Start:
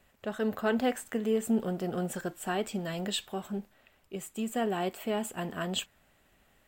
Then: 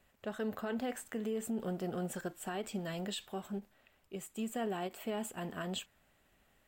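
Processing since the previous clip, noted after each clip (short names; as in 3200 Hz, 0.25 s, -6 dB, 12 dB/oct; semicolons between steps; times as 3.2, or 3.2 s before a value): limiter -24.5 dBFS, peak gain reduction 8 dB; ending taper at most 430 dB/s; gain -4.5 dB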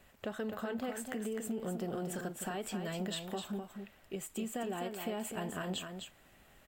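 compressor 3:1, threshold -46 dBFS, peak gain reduction 10 dB; on a send: echo 0.255 s -6.5 dB; on the sum: gain +7.5 dB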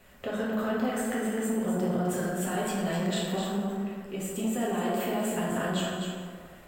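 plate-style reverb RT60 1.9 s, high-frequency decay 0.45×, DRR -5.5 dB; core saturation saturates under 380 Hz; gain +3 dB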